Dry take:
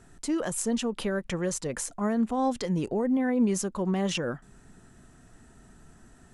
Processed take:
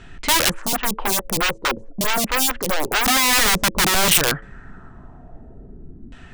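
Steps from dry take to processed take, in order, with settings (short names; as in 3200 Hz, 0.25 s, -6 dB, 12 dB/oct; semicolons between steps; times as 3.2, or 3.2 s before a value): LFO low-pass saw down 0.49 Hz 270–3100 Hz; wrapped overs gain 23.5 dB; low shelf 97 Hz +9 dB; soft clip -21 dBFS, distortion -22 dB; high shelf 2100 Hz +10 dB; de-hum 110.1 Hz, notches 5; 0.51–3.06 photocell phaser 4.6 Hz; gain +8 dB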